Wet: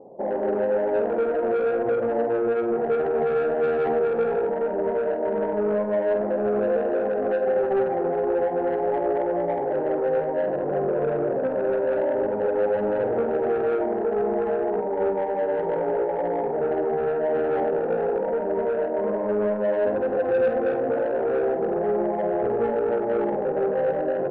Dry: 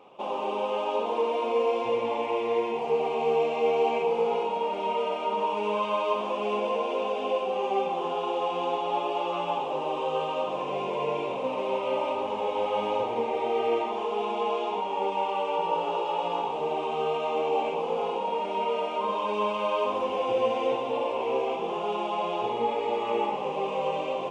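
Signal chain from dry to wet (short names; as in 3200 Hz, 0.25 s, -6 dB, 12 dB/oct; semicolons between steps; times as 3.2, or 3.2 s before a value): steep low-pass 690 Hz 36 dB/oct; in parallel at -1 dB: limiter -24.5 dBFS, peak gain reduction 8.5 dB; on the sum: soft clip -22.5 dBFS, distortion -14 dB; flutter echo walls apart 8.3 m, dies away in 0.29 s; gain +4.5 dB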